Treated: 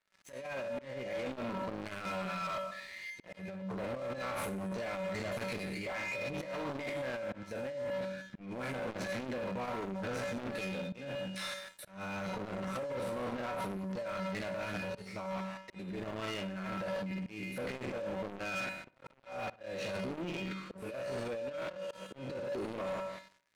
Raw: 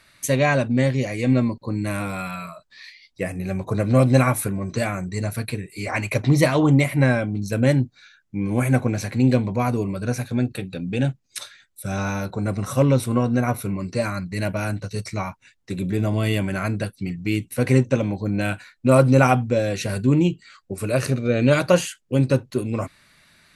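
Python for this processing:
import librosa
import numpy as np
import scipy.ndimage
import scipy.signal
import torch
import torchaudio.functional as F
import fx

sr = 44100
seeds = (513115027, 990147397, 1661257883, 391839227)

y = fx.spec_trails(x, sr, decay_s=0.66)
y = fx.level_steps(y, sr, step_db=13)
y = fx.bass_treble(y, sr, bass_db=-12, treble_db=-13)
y = fx.comb_fb(y, sr, f0_hz=190.0, decay_s=0.62, harmonics='odd', damping=0.0, mix_pct=90)
y = fx.over_compress(y, sr, threshold_db=-51.0, ratio=-1.0)
y = fx.auto_swell(y, sr, attack_ms=489.0)
y = fx.leveller(y, sr, passes=5)
y = fx.high_shelf(y, sr, hz=9700.0, db=-8.5)
y = fx.echo_filtered(y, sr, ms=61, feedback_pct=47, hz=2700.0, wet_db=-20.0)
y = fx.transformer_sat(y, sr, knee_hz=200.0)
y = y * librosa.db_to_amplitude(1.0)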